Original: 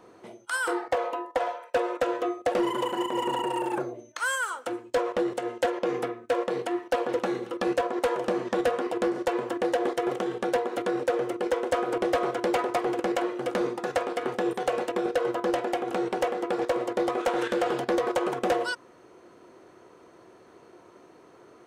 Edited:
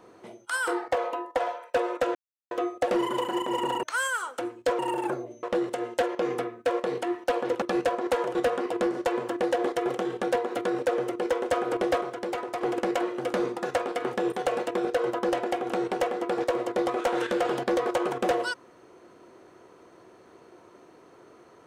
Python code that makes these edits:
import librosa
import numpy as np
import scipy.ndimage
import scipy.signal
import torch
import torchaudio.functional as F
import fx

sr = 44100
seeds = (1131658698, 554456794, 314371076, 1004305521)

y = fx.edit(x, sr, fx.insert_silence(at_s=2.15, length_s=0.36),
    fx.move(start_s=3.47, length_s=0.64, to_s=5.07),
    fx.cut(start_s=7.26, length_s=0.28),
    fx.cut(start_s=8.27, length_s=0.29),
    fx.clip_gain(start_s=12.22, length_s=0.6, db=-6.0), tone=tone)